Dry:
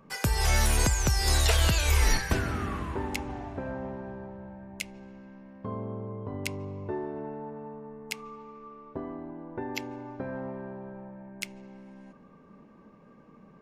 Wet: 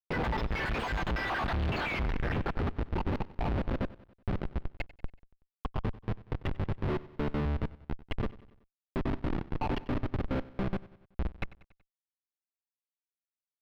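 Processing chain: random spectral dropouts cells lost 65%; 5.76–7.2 de-hum 82.43 Hz, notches 16; in parallel at +1 dB: compressor 16:1, threshold -41 dBFS, peak gain reduction 23 dB; on the sum: Schmitt trigger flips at -33.5 dBFS; air absorption 360 m; on a send: feedback echo 94 ms, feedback 53%, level -19 dB; on the sum: gain +4.5 dB

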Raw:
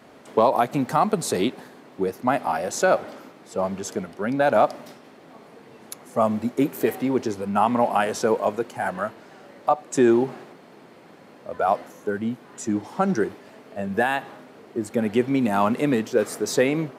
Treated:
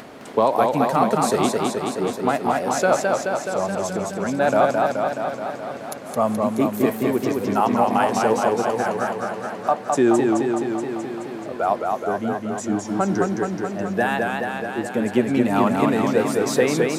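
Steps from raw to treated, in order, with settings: upward compressor, threshold -32 dBFS; warbling echo 0.213 s, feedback 72%, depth 97 cents, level -3 dB

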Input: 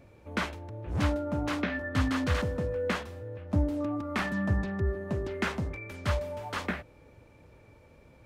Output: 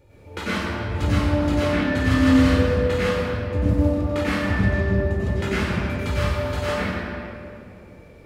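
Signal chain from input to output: high shelf 5000 Hz +5 dB; reverb RT60 2.7 s, pre-delay 91 ms, DRR -10 dB; gain -4.5 dB

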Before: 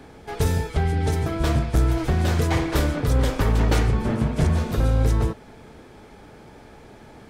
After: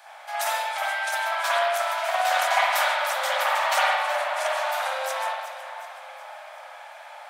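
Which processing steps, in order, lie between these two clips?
steep high-pass 590 Hz 96 dB/oct; high shelf 7600 Hz +6 dB; split-band echo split 2200 Hz, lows 0.527 s, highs 0.369 s, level -13 dB; spring tank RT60 1.1 s, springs 55 ms, chirp 45 ms, DRR -7.5 dB

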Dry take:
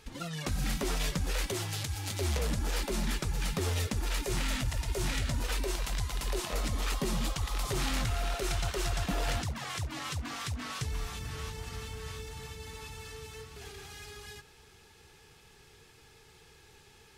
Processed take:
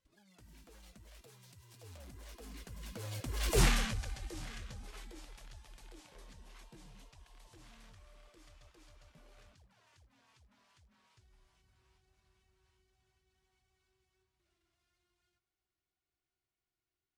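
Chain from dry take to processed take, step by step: Doppler pass-by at 3.62, 59 m/s, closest 4.5 m; gain +6.5 dB

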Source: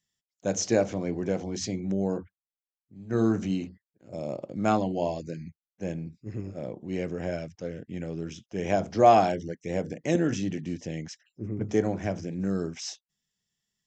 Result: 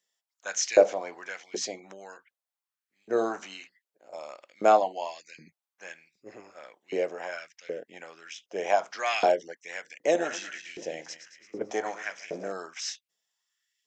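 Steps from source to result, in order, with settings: 10.07–12.52 regenerating reverse delay 0.11 s, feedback 58%, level -9.5 dB; LFO high-pass saw up 1.3 Hz 440–2600 Hz; gain +1.5 dB

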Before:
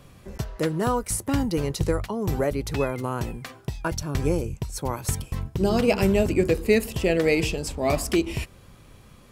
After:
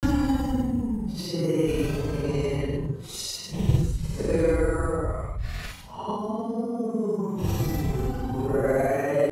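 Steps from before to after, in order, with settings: Paulstretch 8.2×, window 0.05 s, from 1.36; grains 0.1 s, grains 20/s, spray 34 ms, pitch spread up and down by 0 st

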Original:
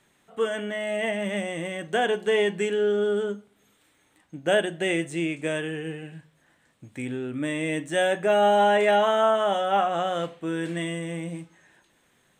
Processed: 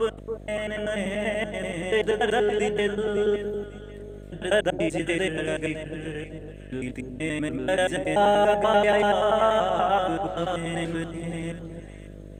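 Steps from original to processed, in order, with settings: slices in reverse order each 96 ms, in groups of 5; echo with dull and thin repeats by turns 0.276 s, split 970 Hz, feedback 50%, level -7 dB; buzz 50 Hz, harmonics 13, -42 dBFS -4 dB/oct

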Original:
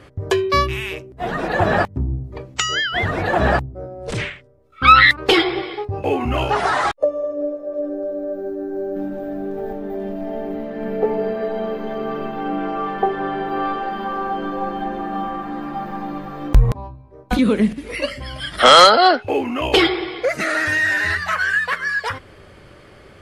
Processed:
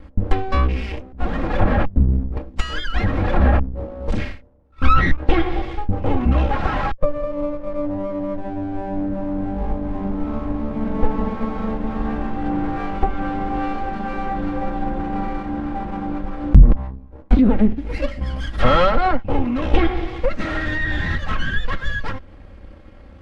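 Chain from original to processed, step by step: minimum comb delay 3.7 ms; treble ducked by the level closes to 2600 Hz, closed at -13 dBFS; in parallel at -2.5 dB: compressor, threshold -31 dBFS, peak gain reduction 22 dB; on the sum: sample leveller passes 1; RIAA curve playback; sine folder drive 5 dB, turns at 16 dBFS; gain -17.5 dB

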